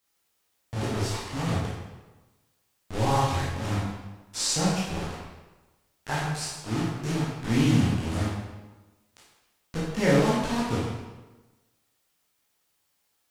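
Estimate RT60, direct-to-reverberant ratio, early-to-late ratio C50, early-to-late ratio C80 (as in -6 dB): 1.2 s, -6.5 dB, 0.0 dB, 3.0 dB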